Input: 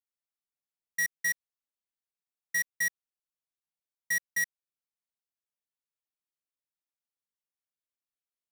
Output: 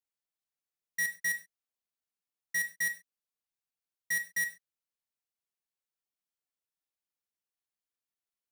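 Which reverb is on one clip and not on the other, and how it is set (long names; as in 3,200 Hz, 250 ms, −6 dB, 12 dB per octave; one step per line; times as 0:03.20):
reverb whose tail is shaped and stops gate 150 ms falling, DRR 6 dB
level −2.5 dB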